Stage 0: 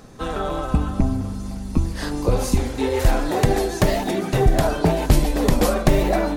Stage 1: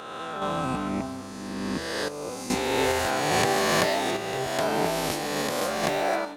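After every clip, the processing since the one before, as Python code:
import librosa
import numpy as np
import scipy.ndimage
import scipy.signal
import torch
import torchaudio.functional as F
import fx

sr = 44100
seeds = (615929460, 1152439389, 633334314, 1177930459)

y = fx.spec_swells(x, sr, rise_s=2.09)
y = fx.weighting(y, sr, curve='A')
y = fx.tremolo_random(y, sr, seeds[0], hz=2.4, depth_pct=75)
y = y * 10.0 ** (-1.0 / 20.0)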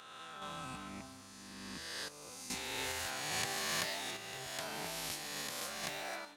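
y = fx.tone_stack(x, sr, knobs='5-5-5')
y = y * 10.0 ** (-1.5 / 20.0)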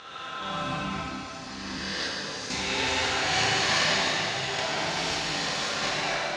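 y = scipy.signal.sosfilt(scipy.signal.butter(4, 6000.0, 'lowpass', fs=sr, output='sos'), x)
y = fx.rev_plate(y, sr, seeds[1], rt60_s=2.7, hf_ratio=0.95, predelay_ms=0, drr_db=-4.5)
y = y * 10.0 ** (8.5 / 20.0)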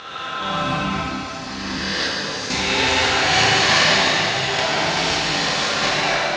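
y = scipy.signal.sosfilt(scipy.signal.butter(2, 7100.0, 'lowpass', fs=sr, output='sos'), x)
y = y * 10.0 ** (9.0 / 20.0)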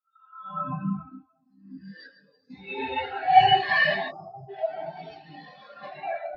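y = fx.spec_box(x, sr, start_s=4.12, length_s=0.37, low_hz=1400.0, high_hz=4800.0, gain_db=-26)
y = fx.notch(y, sr, hz=970.0, q=23.0)
y = fx.spectral_expand(y, sr, expansion=4.0)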